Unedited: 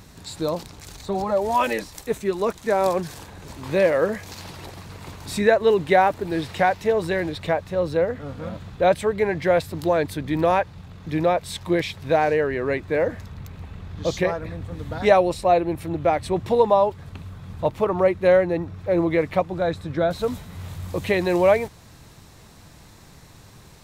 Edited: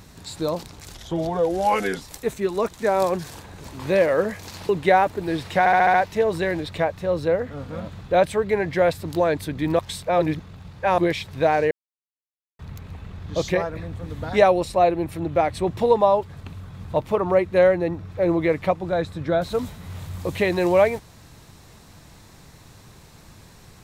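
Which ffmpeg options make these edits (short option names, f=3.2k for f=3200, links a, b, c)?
-filter_complex "[0:a]asplit=13[a][b][c][d][e][f][g][h][i][j][k][l][m];[a]atrim=end=0.944[n];[b]atrim=start=0.94:end=1.85,asetpts=PTS-STARTPTS,asetrate=37485,aresample=44100[o];[c]atrim=start=1.846:end=4.532[p];[d]atrim=start=5.728:end=6.702[q];[e]atrim=start=6.628:end=6.702[r];[f]atrim=start=6.628:end=6.702[s];[g]atrim=start=6.628:end=6.702[t];[h]atrim=start=6.628:end=6.702[u];[i]atrim=start=6.628:end=10.482[v];[j]atrim=start=10.478:end=11.672,asetpts=PTS-STARTPTS,areverse[w];[k]atrim=start=11.668:end=12.4,asetpts=PTS-STARTPTS,afade=t=out:st=0.728:d=0.004:c=hsin[x];[l]atrim=start=12.4:end=13.28,asetpts=PTS-STARTPTS,volume=0[y];[m]atrim=start=13.28,asetpts=PTS-STARTPTS,afade=t=in:d=0.004:c=hsin[z];[n][o]acrossfade=d=0.004:c1=hsin:c2=hsin[aa];[aa][p]acrossfade=d=0.004:c1=hsin:c2=hsin[ab];[ab][q]acrossfade=d=0.004:c1=hsin:c2=hsin[ac];[ac][r]acrossfade=d=0.004:c1=hsin:c2=hsin[ad];[ad][s]acrossfade=d=0.004:c1=hsin:c2=hsin[ae];[ae][t]acrossfade=d=0.004:c1=hsin:c2=hsin[af];[af][u]acrossfade=d=0.004:c1=hsin:c2=hsin[ag];[ag][v]acrossfade=d=0.004:c1=hsin:c2=hsin[ah];[ah][w]acrossfade=d=0.004:c1=hsin:c2=hsin[ai];[x][y][z]concat=n=3:v=0:a=1[aj];[ai][aj]acrossfade=d=0.004:c1=hsin:c2=hsin"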